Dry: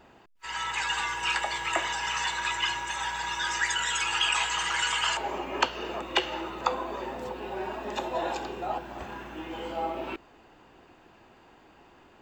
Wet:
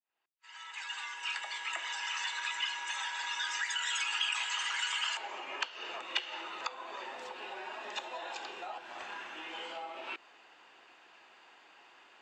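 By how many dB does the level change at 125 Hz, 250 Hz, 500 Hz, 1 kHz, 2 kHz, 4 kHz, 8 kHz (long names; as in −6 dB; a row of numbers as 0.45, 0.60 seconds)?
below −25 dB, −17.5 dB, −13.5 dB, −10.0 dB, −6.0 dB, −5.0 dB, −7.5 dB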